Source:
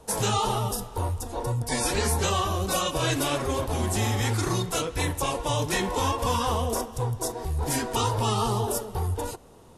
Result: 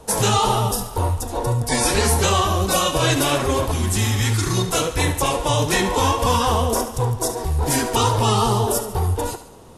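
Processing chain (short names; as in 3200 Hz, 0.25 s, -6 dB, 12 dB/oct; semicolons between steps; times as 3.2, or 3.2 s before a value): 3.71–4.57 bell 640 Hz -12 dB 1.4 oct; thinning echo 72 ms, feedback 46%, level -11 dB; gain +7 dB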